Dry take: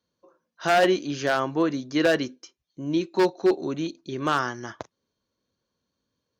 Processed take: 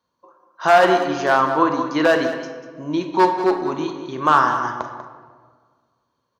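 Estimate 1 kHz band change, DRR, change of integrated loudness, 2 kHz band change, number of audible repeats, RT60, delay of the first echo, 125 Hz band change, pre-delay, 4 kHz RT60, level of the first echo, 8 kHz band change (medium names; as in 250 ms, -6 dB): +11.0 dB, 4.5 dB, +6.0 dB, +6.0 dB, 2, 1.7 s, 52 ms, +1.5 dB, 14 ms, 0.90 s, -14.5 dB, no reading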